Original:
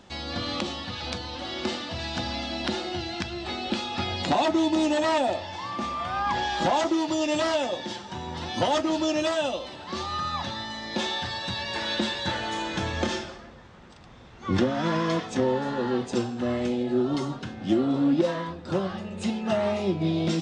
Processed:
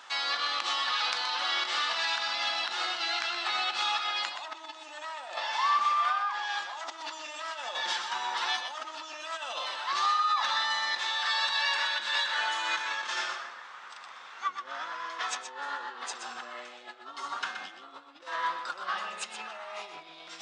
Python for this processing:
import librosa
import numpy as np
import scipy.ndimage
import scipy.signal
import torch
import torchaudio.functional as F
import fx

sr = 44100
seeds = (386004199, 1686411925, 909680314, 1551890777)

y = fx.over_compress(x, sr, threshold_db=-33.0, ratio=-1.0)
y = fx.highpass_res(y, sr, hz=1200.0, q=2.0)
y = y + 10.0 ** (-8.5 / 20.0) * np.pad(y, (int(124 * sr / 1000.0), 0))[:len(y)]